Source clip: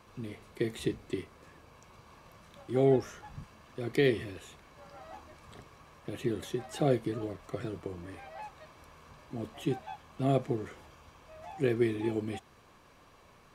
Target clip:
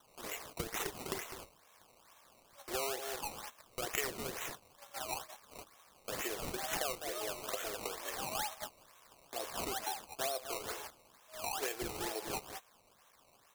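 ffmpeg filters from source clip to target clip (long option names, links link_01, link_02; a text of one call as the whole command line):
ffmpeg -i in.wav -filter_complex "[0:a]aresample=16000,aresample=44100,asplit=2[link_01][link_02];[link_02]aecho=0:1:202:0.266[link_03];[link_01][link_03]amix=inputs=2:normalize=0,agate=range=-15dB:threshold=-49dB:ratio=16:detection=peak,atempo=1,highpass=frequency=560:width=0.5412,highpass=frequency=560:width=1.3066,acompressor=threshold=-44dB:ratio=10,acrusher=samples=18:mix=1:aa=0.000001:lfo=1:lforange=18:lforate=2.2,highshelf=frequency=4100:gain=10.5,volume=7.5dB" out.wav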